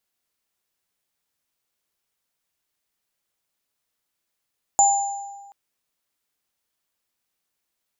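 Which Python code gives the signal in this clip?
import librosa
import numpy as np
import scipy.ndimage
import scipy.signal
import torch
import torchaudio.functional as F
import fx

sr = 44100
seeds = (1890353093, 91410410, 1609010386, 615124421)

y = fx.additive_free(sr, length_s=0.73, hz=801.0, level_db=-13, upper_db=(-1,), decay_s=1.4, upper_decays_s=(0.88,), upper_hz=(7090.0,))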